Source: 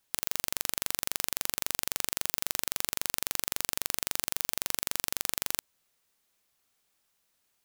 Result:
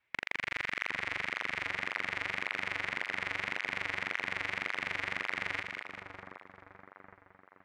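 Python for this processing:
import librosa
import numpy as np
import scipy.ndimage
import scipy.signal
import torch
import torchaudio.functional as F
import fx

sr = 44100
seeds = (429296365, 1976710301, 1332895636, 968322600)

p1 = fx.lowpass_res(x, sr, hz=2500.0, q=4.2)
p2 = fx.formant_shift(p1, sr, semitones=-3)
p3 = p2 + fx.echo_split(p2, sr, split_hz=1300.0, low_ms=770, high_ms=202, feedback_pct=52, wet_db=-5, dry=0)
y = fx.flanger_cancel(p3, sr, hz=1.8, depth_ms=5.4)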